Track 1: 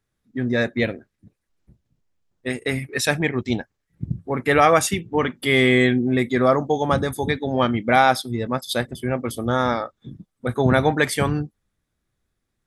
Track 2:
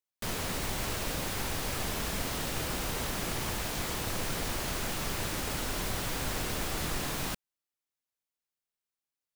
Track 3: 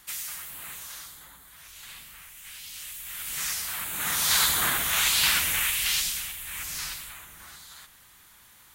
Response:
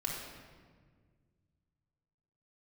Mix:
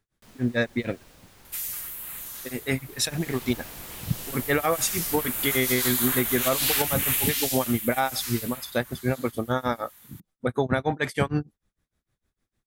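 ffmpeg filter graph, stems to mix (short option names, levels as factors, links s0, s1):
-filter_complex "[0:a]tremolo=f=6.6:d=0.98,volume=1.19[s0];[1:a]volume=0.376,afade=t=in:st=2.84:d=0.65:silence=0.281838[s1];[2:a]equalizer=f=13000:w=1.1:g=9.5,adelay=1450,volume=0.708[s2];[s0][s1][s2]amix=inputs=3:normalize=0,alimiter=limit=0.266:level=0:latency=1:release=187"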